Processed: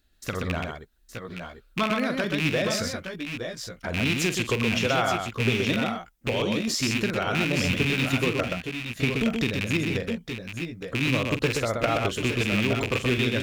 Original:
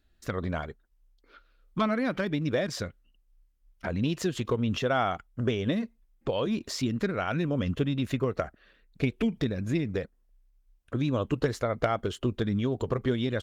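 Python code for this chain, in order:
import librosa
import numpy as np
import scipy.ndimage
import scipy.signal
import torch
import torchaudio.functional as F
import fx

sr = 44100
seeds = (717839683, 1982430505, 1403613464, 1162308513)

y = fx.rattle_buzz(x, sr, strikes_db=-31.0, level_db=-19.0)
y = fx.high_shelf(y, sr, hz=3300.0, db=9.5)
y = fx.echo_multitap(y, sr, ms=(44, 126, 866, 883), db=(-10.5, -4.0, -8.5, -10.5))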